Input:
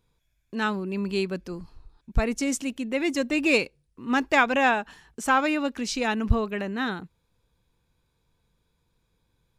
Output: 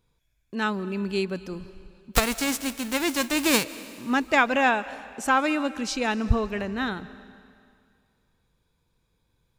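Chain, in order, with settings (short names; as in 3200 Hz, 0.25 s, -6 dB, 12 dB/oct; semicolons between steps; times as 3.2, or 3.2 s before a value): 2.13–3.63 spectral whitening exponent 0.3; on a send: reverb RT60 2.2 s, pre-delay 0.115 s, DRR 16.5 dB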